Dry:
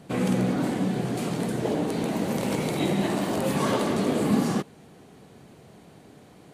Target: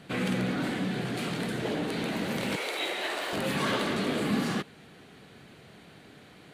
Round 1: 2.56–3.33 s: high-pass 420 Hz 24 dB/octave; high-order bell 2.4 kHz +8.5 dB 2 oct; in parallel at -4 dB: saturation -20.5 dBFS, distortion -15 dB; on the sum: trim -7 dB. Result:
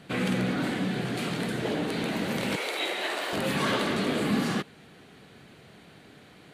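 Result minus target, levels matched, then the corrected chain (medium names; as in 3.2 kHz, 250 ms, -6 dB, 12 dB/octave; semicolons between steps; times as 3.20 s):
saturation: distortion -8 dB
2.56–3.33 s: high-pass 420 Hz 24 dB/octave; high-order bell 2.4 kHz +8.5 dB 2 oct; in parallel at -4 dB: saturation -31.5 dBFS, distortion -6 dB; on the sum: trim -7 dB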